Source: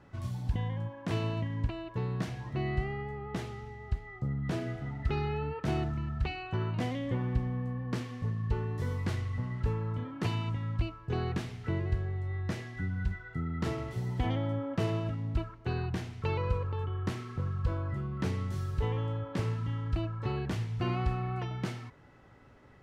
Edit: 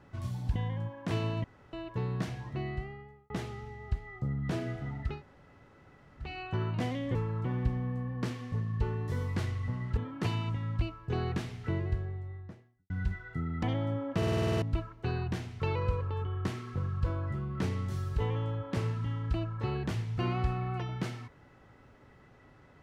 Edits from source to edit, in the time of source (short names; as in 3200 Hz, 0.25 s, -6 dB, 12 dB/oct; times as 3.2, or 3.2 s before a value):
1.44–1.73 room tone
2.32–3.3 fade out
5.11–6.28 room tone, crossfade 0.24 s
9.67–9.97 move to 7.15
11.64–12.9 studio fade out
13.63–14.25 cut
14.79 stutter in place 0.05 s, 9 plays